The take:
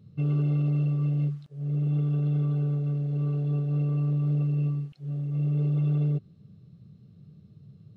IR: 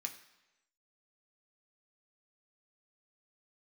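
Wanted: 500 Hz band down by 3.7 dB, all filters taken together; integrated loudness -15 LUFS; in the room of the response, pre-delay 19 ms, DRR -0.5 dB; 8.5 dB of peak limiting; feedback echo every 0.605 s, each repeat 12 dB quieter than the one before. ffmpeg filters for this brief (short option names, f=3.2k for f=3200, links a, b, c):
-filter_complex "[0:a]equalizer=f=500:t=o:g=-4.5,alimiter=level_in=4dB:limit=-24dB:level=0:latency=1,volume=-4dB,aecho=1:1:605|1210|1815:0.251|0.0628|0.0157,asplit=2[a][b];[1:a]atrim=start_sample=2205,adelay=19[c];[b][c]afir=irnorm=-1:irlink=0,volume=2.5dB[d];[a][d]amix=inputs=2:normalize=0,volume=28dB"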